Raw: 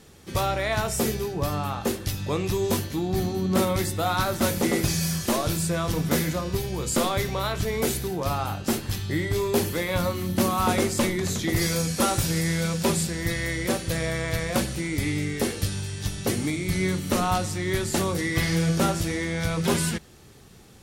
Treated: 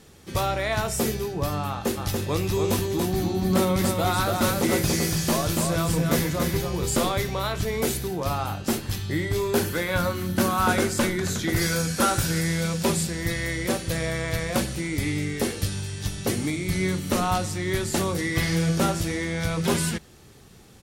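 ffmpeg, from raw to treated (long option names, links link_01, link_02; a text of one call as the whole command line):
ffmpeg -i in.wav -filter_complex "[0:a]asplit=3[link_01][link_02][link_03];[link_01]afade=type=out:start_time=1.96:duration=0.02[link_04];[link_02]aecho=1:1:285:0.631,afade=type=in:start_time=1.96:duration=0.02,afade=type=out:start_time=7.11:duration=0.02[link_05];[link_03]afade=type=in:start_time=7.11:duration=0.02[link_06];[link_04][link_05][link_06]amix=inputs=3:normalize=0,asettb=1/sr,asplit=3[link_07][link_08][link_09];[link_07]atrim=end=9.494[link_10];[link_08]atrim=start=9.49:end=12.46,asetpts=PTS-STARTPTS,afade=type=in:duration=0.004:curve=qsin,afade=type=out:start_time=2.966:duration=0.004:curve=qsin,equalizer=frequency=1500:width_type=o:width=0.24:gain=10.5[link_11];[link_09]atrim=start=12.456[link_12];[link_10][link_11]acrossfade=duration=0.004:curve1=hsin:curve2=qsin[link_13];[link_13][link_12]acrossfade=duration=0.004:curve1=qsin:curve2=hsin" out.wav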